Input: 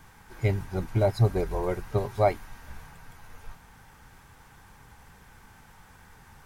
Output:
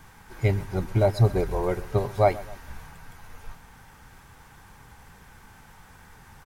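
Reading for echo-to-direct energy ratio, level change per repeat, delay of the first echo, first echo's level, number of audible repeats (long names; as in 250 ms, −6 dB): −18.5 dB, −6.5 dB, 129 ms, −19.5 dB, 2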